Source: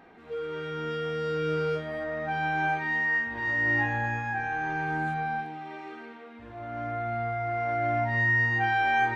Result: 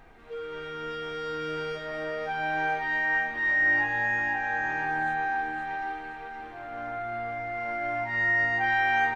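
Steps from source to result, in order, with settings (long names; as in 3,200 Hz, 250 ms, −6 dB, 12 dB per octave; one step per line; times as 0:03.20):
high-pass filter 470 Hz 6 dB per octave
background noise brown −56 dBFS
repeating echo 518 ms, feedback 42%, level −5.5 dB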